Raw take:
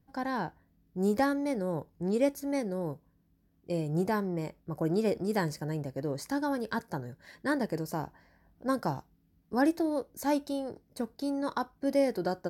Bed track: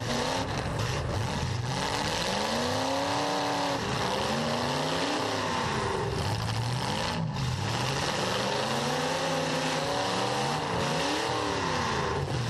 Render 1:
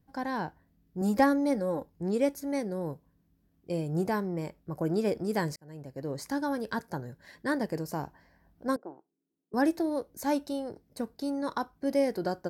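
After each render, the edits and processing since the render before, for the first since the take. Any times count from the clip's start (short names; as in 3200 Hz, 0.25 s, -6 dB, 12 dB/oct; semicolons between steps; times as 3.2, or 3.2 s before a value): 1.01–1.87 comb 3.7 ms, depth 70%; 5.56–6.2 fade in linear; 8.76–9.54 ladder band-pass 410 Hz, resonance 55%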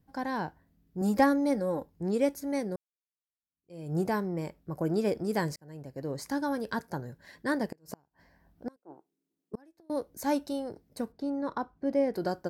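2.76–3.92 fade in exponential; 7.66–9.9 flipped gate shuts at -25 dBFS, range -33 dB; 11.12–12.14 LPF 1400 Hz 6 dB/oct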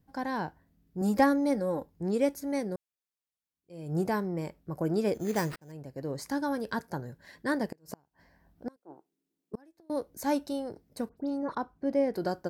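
5.14–5.72 sample-rate reducer 6700 Hz; 11.09–11.55 dispersion highs, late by 86 ms, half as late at 2300 Hz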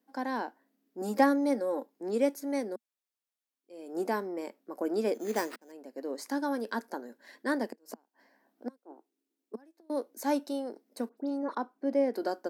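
elliptic high-pass 230 Hz, stop band 40 dB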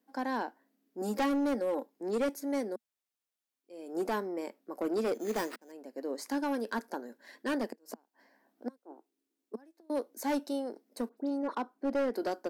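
hard clip -26 dBFS, distortion -10 dB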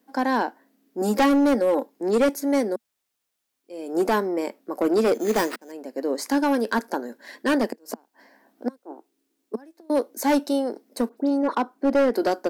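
gain +11 dB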